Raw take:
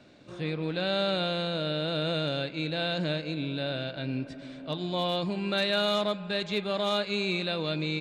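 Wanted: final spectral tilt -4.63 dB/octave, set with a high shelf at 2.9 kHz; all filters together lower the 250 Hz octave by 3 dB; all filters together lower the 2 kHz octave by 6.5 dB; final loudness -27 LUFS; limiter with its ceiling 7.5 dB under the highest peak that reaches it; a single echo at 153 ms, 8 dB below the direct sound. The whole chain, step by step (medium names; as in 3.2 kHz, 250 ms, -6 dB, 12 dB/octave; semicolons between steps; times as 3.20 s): peaking EQ 250 Hz -4.5 dB; peaking EQ 2 kHz -6 dB; treble shelf 2.9 kHz -7.5 dB; peak limiter -28.5 dBFS; delay 153 ms -8 dB; trim +9.5 dB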